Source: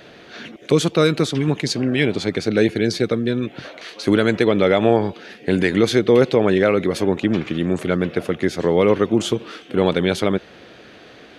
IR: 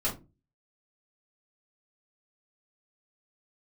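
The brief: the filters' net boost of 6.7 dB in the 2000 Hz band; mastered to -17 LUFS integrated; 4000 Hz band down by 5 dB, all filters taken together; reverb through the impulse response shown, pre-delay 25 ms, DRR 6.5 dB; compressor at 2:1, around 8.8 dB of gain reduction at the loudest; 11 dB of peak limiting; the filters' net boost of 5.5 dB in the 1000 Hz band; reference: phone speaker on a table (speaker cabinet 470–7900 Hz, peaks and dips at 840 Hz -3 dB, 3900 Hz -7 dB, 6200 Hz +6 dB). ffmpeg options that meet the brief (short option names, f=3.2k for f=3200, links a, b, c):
-filter_complex "[0:a]equalizer=f=1k:t=o:g=7,equalizer=f=2k:t=o:g=7.5,equalizer=f=4k:t=o:g=-6,acompressor=threshold=-25dB:ratio=2,alimiter=limit=-17.5dB:level=0:latency=1,asplit=2[a][b];[1:a]atrim=start_sample=2205,adelay=25[c];[b][c]afir=irnorm=-1:irlink=0,volume=-13.5dB[d];[a][d]amix=inputs=2:normalize=0,highpass=f=470:w=0.5412,highpass=f=470:w=1.3066,equalizer=f=840:t=q:w=4:g=-3,equalizer=f=3.9k:t=q:w=4:g=-7,equalizer=f=6.2k:t=q:w=4:g=6,lowpass=f=7.9k:w=0.5412,lowpass=f=7.9k:w=1.3066,volume=16dB"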